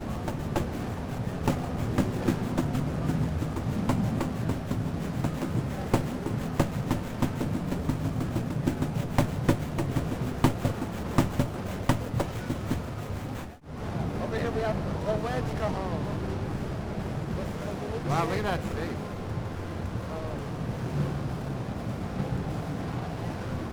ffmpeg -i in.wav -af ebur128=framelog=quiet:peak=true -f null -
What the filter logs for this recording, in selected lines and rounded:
Integrated loudness:
  I:         -30.7 LUFS
  Threshold: -40.7 LUFS
Loudness range:
  LRA:         3.9 LU
  Threshold: -50.6 LUFS
  LRA low:   -32.8 LUFS
  LRA high:  -28.9 LUFS
True peak:
  Peak:       -7.9 dBFS